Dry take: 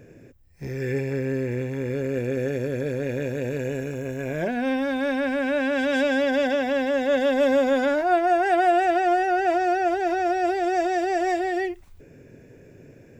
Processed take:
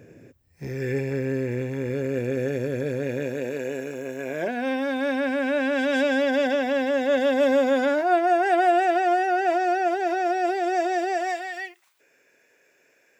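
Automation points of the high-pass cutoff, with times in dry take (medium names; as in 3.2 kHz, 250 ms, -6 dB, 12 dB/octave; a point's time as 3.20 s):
2.95 s 82 Hz
3.53 s 270 Hz
4.72 s 270 Hz
5.35 s 130 Hz
8.23 s 130 Hz
9.07 s 310 Hz
11.01 s 310 Hz
11.50 s 1.1 kHz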